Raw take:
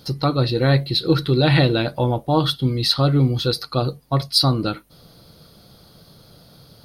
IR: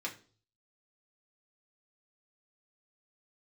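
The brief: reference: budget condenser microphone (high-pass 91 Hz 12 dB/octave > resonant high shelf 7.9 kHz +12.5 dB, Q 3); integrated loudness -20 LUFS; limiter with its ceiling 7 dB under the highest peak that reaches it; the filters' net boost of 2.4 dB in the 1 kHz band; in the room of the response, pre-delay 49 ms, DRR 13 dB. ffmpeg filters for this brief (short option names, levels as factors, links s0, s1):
-filter_complex "[0:a]equalizer=f=1000:t=o:g=3.5,alimiter=limit=0.335:level=0:latency=1,asplit=2[s0][s1];[1:a]atrim=start_sample=2205,adelay=49[s2];[s1][s2]afir=irnorm=-1:irlink=0,volume=0.178[s3];[s0][s3]amix=inputs=2:normalize=0,highpass=91,highshelf=f=7900:t=q:w=3:g=12.5,volume=1.06"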